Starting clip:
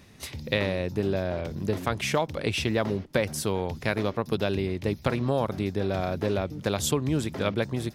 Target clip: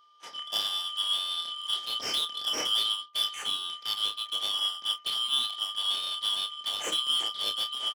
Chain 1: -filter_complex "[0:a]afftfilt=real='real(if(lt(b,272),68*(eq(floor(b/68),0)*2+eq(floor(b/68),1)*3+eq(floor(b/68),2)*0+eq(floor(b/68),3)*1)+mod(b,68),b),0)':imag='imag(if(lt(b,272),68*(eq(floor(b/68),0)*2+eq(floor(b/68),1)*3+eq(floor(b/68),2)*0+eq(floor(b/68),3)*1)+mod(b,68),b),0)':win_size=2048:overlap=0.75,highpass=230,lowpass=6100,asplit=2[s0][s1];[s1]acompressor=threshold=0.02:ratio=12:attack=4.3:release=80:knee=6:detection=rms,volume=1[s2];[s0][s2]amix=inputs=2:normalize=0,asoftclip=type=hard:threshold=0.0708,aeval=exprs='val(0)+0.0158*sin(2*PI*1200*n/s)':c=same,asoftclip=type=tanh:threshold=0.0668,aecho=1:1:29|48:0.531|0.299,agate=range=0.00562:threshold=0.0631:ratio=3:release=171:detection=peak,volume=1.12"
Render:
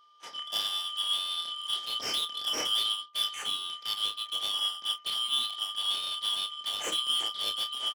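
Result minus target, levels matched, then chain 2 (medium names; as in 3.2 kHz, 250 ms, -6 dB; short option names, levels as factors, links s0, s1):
hard clipper: distortion +20 dB
-filter_complex "[0:a]afftfilt=real='real(if(lt(b,272),68*(eq(floor(b/68),0)*2+eq(floor(b/68),1)*3+eq(floor(b/68),2)*0+eq(floor(b/68),3)*1)+mod(b,68),b),0)':imag='imag(if(lt(b,272),68*(eq(floor(b/68),0)*2+eq(floor(b/68),1)*3+eq(floor(b/68),2)*0+eq(floor(b/68),3)*1)+mod(b,68),b),0)':win_size=2048:overlap=0.75,highpass=230,lowpass=6100,asplit=2[s0][s1];[s1]acompressor=threshold=0.02:ratio=12:attack=4.3:release=80:knee=6:detection=rms,volume=1[s2];[s0][s2]amix=inputs=2:normalize=0,asoftclip=type=hard:threshold=0.251,aeval=exprs='val(0)+0.0158*sin(2*PI*1200*n/s)':c=same,asoftclip=type=tanh:threshold=0.0668,aecho=1:1:29|48:0.531|0.299,agate=range=0.00562:threshold=0.0631:ratio=3:release=171:detection=peak,volume=1.12"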